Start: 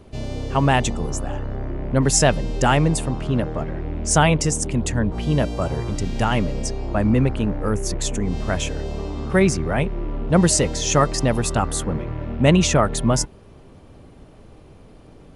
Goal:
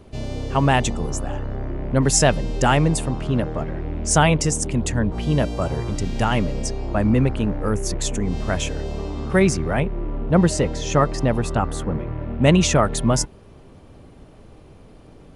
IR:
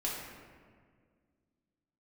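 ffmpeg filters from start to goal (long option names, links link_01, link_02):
-filter_complex "[0:a]asettb=1/sr,asplit=3[link_01][link_02][link_03];[link_01]atrim=end=9.804[link_04];[link_02]atrim=start=9.8:end=12.42,asetpts=PTS-STARTPTS,afade=type=in:duration=0.004:curve=qsin,afade=type=out:start_time=2.616:duration=0.004:curve=qsin,highshelf=frequency=3800:gain=-12[link_05];[link_03]atrim=start=12.416[link_06];[link_04][link_05]acrossfade=duration=0.004:curve1=hsin:curve2=qsin[link_07];[link_07][link_06]acrossfade=duration=0.004:curve1=qsin:curve2=hsin"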